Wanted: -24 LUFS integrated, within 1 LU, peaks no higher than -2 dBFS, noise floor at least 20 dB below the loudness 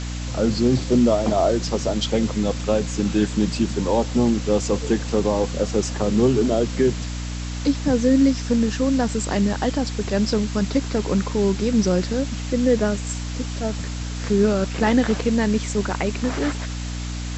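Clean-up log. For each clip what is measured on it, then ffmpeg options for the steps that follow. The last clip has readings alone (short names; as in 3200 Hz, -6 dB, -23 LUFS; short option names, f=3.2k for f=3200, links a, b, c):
hum 60 Hz; harmonics up to 300 Hz; hum level -26 dBFS; noise floor -29 dBFS; noise floor target -42 dBFS; loudness -21.5 LUFS; peak -6.5 dBFS; loudness target -24.0 LUFS
-> -af "bandreject=f=60:t=h:w=6,bandreject=f=120:t=h:w=6,bandreject=f=180:t=h:w=6,bandreject=f=240:t=h:w=6,bandreject=f=300:t=h:w=6"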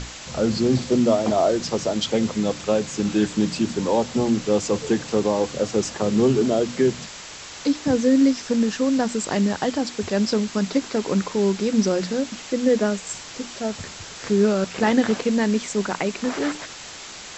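hum none; noise floor -38 dBFS; noise floor target -42 dBFS
-> -af "afftdn=nr=6:nf=-38"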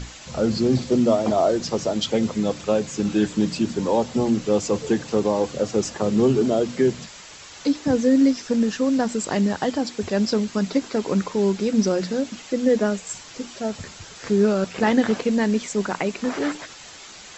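noise floor -42 dBFS; loudness -22.0 LUFS; peak -6.5 dBFS; loudness target -24.0 LUFS
-> -af "volume=-2dB"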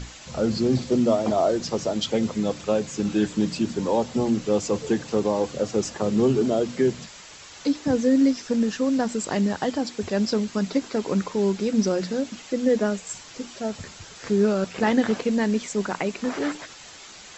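loudness -24.0 LUFS; peak -8.5 dBFS; noise floor -44 dBFS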